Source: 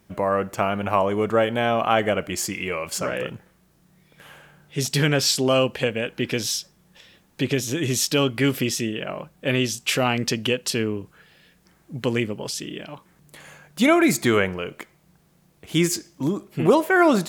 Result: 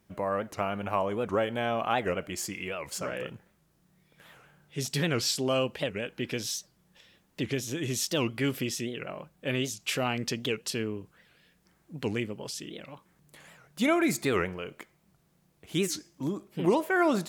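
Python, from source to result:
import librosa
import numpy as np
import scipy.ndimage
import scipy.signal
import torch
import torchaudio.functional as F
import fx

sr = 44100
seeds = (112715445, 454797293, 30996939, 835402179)

y = fx.record_warp(x, sr, rpm=78.0, depth_cents=250.0)
y = y * 10.0 ** (-8.0 / 20.0)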